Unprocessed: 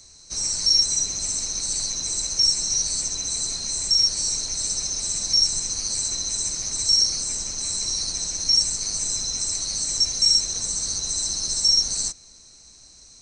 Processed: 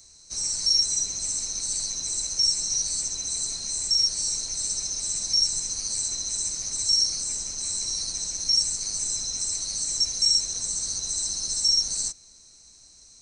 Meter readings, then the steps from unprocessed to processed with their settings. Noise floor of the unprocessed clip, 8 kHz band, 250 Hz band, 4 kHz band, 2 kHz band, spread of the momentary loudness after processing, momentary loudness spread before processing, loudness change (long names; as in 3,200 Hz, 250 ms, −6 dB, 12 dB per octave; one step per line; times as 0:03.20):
−49 dBFS, −2.5 dB, −6.0 dB, −3.5 dB, −5.5 dB, 7 LU, 7 LU, −3.0 dB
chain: high-shelf EQ 8,800 Hz +11 dB
level −6 dB